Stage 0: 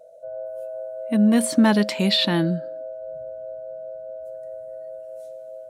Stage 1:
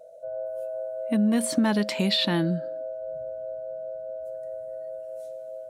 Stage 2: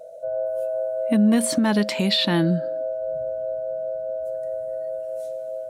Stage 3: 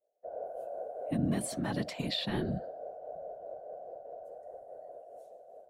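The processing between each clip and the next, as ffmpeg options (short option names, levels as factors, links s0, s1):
-af "acompressor=threshold=0.0794:ratio=2.5"
-af "alimiter=limit=0.133:level=0:latency=1:release=437,volume=2.24"
-af "agate=range=0.0224:threshold=0.0631:ratio=3:detection=peak,afftfilt=real='hypot(re,im)*cos(2*PI*random(0))':imag='hypot(re,im)*sin(2*PI*random(1))':win_size=512:overlap=0.75,volume=0.422"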